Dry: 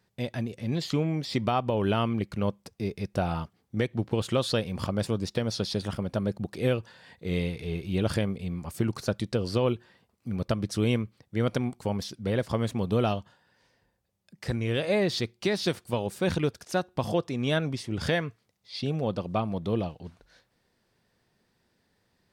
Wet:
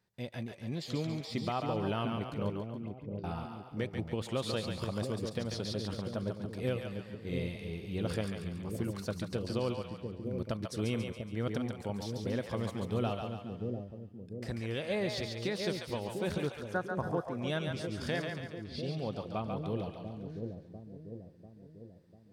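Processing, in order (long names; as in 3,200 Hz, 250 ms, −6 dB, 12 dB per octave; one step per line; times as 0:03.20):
0:02.54–0:03.24: envelope filter 210–4,800 Hz, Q 15, up, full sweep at −24 dBFS
0:16.47–0:17.37: high shelf with overshoot 2,100 Hz −10 dB, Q 3
echo with a time of its own for lows and highs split 550 Hz, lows 695 ms, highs 140 ms, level −4.5 dB
level −8.5 dB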